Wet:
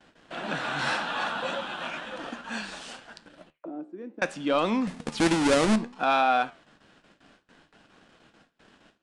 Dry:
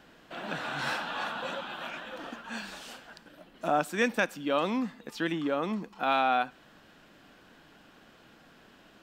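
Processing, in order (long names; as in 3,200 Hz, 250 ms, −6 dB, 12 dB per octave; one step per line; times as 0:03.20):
0:04.87–0:05.76: each half-wave held at its own peak
leveller curve on the samples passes 1
0:03.50–0:04.22: envelope filter 320–2,600 Hz, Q 7.6, down, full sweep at −29 dBFS
flanger 0.64 Hz, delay 8.6 ms, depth 8.3 ms, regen +81%
noise gate with hold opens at −49 dBFS
downsampling to 22,050 Hz
level +5 dB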